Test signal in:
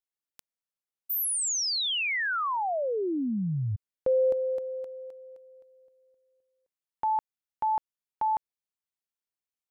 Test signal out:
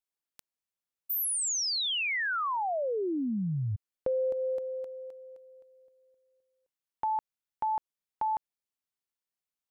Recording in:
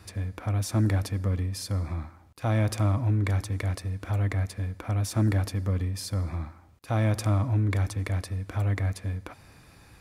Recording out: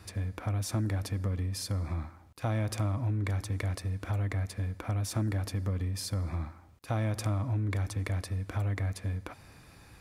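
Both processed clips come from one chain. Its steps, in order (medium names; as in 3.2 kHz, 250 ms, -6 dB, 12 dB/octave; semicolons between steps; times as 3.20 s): compression, threshold -26 dBFS; trim -1 dB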